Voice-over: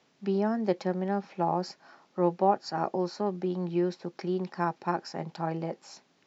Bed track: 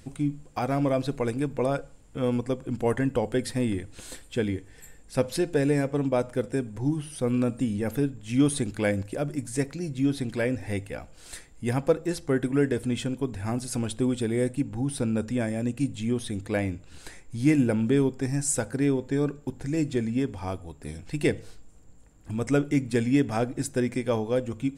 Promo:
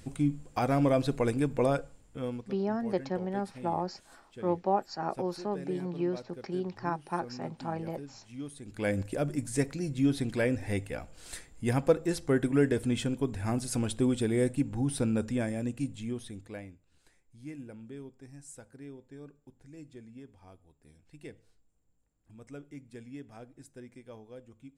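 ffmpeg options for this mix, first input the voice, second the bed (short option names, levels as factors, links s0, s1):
-filter_complex "[0:a]adelay=2250,volume=0.668[s0];[1:a]volume=7.08,afade=t=out:st=1.68:d=0.82:silence=0.11885,afade=t=in:st=8.62:d=0.41:silence=0.133352,afade=t=out:st=15:d=1.77:silence=0.0944061[s1];[s0][s1]amix=inputs=2:normalize=0"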